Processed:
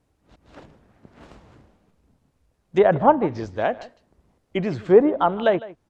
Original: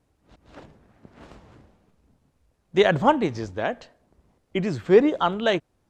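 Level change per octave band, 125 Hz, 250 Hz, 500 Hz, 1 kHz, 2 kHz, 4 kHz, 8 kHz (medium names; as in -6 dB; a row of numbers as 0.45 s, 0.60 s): +0.5 dB, +1.0 dB, +2.5 dB, +3.0 dB, -2.5 dB, -7.5 dB, no reading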